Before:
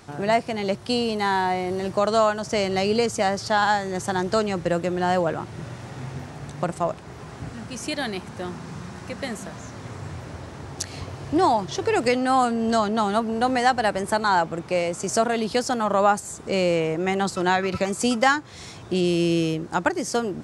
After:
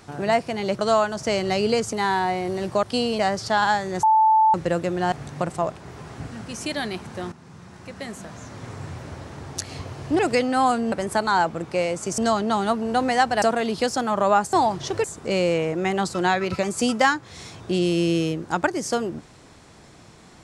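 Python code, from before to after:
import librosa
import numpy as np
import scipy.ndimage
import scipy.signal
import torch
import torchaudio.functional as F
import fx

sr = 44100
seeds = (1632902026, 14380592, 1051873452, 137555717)

y = fx.edit(x, sr, fx.swap(start_s=0.79, length_s=0.36, other_s=2.05, other_length_s=1.14),
    fx.bleep(start_s=4.03, length_s=0.51, hz=877.0, db=-13.0),
    fx.cut(start_s=5.12, length_s=1.22),
    fx.fade_in_from(start_s=8.54, length_s=1.38, floor_db=-12.5),
    fx.move(start_s=11.41, length_s=0.51, to_s=16.26),
    fx.move(start_s=12.65, length_s=1.24, to_s=15.15), tone=tone)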